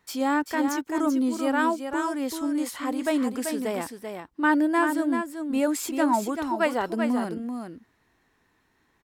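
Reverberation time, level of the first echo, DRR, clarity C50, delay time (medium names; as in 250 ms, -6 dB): no reverb, -6.5 dB, no reverb, no reverb, 387 ms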